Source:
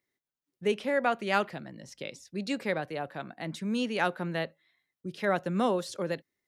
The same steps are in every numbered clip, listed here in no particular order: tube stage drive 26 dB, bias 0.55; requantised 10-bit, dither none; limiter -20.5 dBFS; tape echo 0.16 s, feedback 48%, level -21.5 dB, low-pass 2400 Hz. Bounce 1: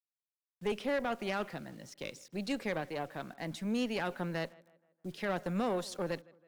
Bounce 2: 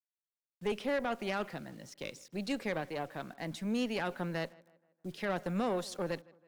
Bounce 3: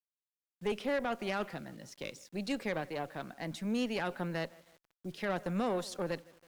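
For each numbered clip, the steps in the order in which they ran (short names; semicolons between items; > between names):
limiter > requantised > tape echo > tube stage; requantised > limiter > tube stage > tape echo; tape echo > requantised > limiter > tube stage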